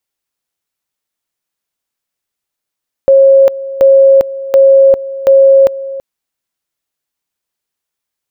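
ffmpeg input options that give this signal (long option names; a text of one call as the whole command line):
ffmpeg -f lavfi -i "aevalsrc='pow(10,(-2-16.5*gte(mod(t,0.73),0.4))/20)*sin(2*PI*543*t)':duration=2.92:sample_rate=44100" out.wav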